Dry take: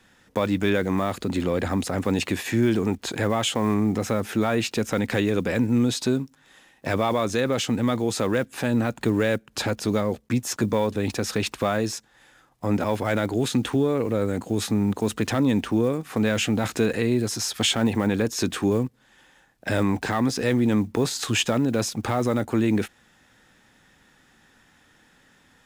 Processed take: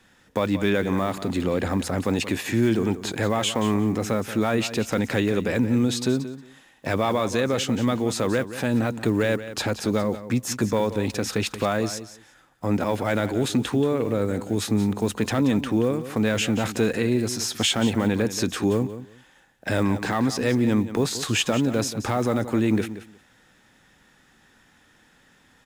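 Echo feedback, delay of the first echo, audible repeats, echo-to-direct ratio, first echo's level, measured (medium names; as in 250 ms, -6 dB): 17%, 179 ms, 2, -13.0 dB, -13.0 dB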